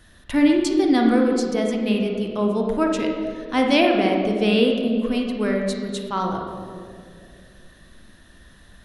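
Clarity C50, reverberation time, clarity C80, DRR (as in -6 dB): 2.0 dB, 2.4 s, 4.5 dB, 1.0 dB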